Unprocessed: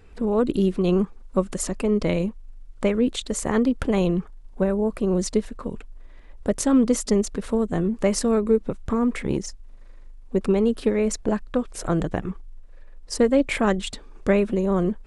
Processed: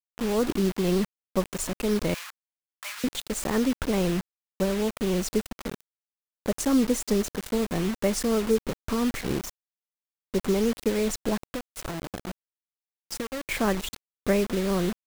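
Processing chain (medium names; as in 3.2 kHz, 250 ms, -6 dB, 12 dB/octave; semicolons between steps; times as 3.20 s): 11.48–13.44 s: compression 16:1, threshold -27 dBFS, peak gain reduction 14.5 dB; bit crusher 5-bit; 2.14–3.04 s: inverse Chebyshev high-pass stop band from 410 Hz, stop band 50 dB; trim -4 dB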